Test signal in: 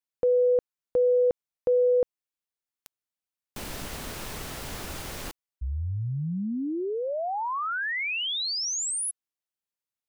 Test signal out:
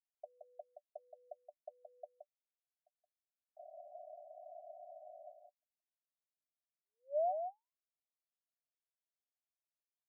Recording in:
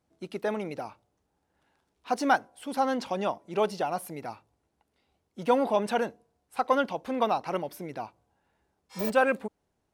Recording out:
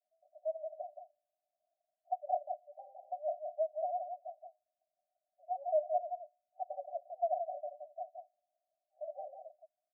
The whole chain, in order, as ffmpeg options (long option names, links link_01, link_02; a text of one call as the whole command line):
ffmpeg -i in.wav -af "asuperpass=centerf=660:order=12:qfactor=4.2,aecho=1:1:172:0.473,volume=-3dB" out.wav